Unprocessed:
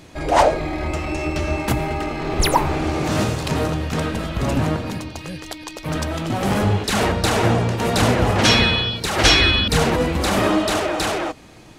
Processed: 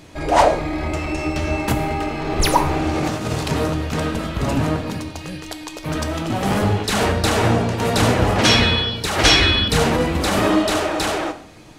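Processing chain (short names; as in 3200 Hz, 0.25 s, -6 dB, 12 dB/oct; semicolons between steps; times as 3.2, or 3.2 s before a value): 2.95–3.44 negative-ratio compressor -22 dBFS, ratio -0.5; non-linear reverb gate 0.21 s falling, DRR 8 dB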